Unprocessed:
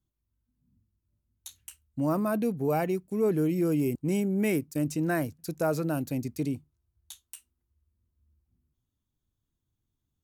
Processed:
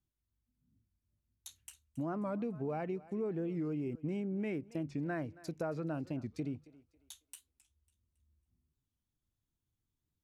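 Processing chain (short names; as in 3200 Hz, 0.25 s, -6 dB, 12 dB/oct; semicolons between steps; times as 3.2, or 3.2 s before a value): treble ducked by the level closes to 2800 Hz, closed at -28 dBFS; compressor, threshold -28 dBFS, peak gain reduction 7 dB; thinning echo 0.274 s, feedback 33%, high-pass 300 Hz, level -18.5 dB; record warp 45 rpm, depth 160 cents; gain -5.5 dB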